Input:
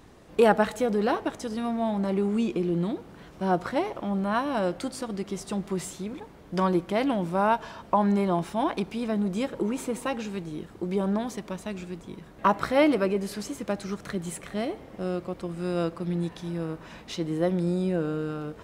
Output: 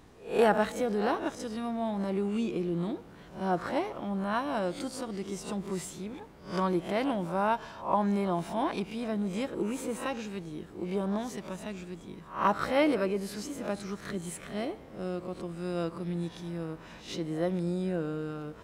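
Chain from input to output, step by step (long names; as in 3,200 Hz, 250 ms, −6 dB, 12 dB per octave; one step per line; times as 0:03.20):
peak hold with a rise ahead of every peak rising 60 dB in 0.37 s
level −5 dB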